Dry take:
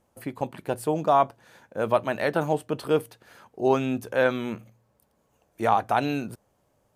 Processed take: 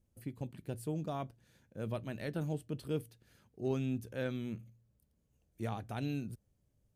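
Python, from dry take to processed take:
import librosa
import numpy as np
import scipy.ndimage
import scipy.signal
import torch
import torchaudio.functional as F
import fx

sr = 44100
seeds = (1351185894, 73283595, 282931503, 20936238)

y = fx.tone_stack(x, sr, knobs='10-0-1')
y = fx.cheby_harmonics(y, sr, harmonics=(7,), levels_db=(-43,), full_scale_db=-33.0)
y = F.gain(torch.from_numpy(y), 9.5).numpy()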